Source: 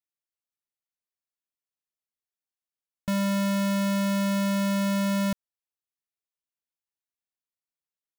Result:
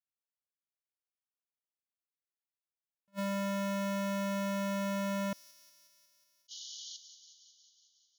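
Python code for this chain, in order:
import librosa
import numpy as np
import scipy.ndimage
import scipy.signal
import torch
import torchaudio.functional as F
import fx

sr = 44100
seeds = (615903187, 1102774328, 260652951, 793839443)

y = fx.highpass(x, sr, hz=600.0, slope=6)
y = fx.peak_eq(y, sr, hz=14000.0, db=-12.0, octaves=2.9)
y = fx.leveller(y, sr, passes=1)
y = fx.spec_paint(y, sr, seeds[0], shape='noise', start_s=6.48, length_s=0.49, low_hz=2900.0, high_hz=6900.0, level_db=-45.0)
y = fx.echo_wet_highpass(y, sr, ms=182, feedback_pct=70, hz=3700.0, wet_db=-9.5)
y = fx.attack_slew(y, sr, db_per_s=580.0)
y = y * librosa.db_to_amplitude(-1.5)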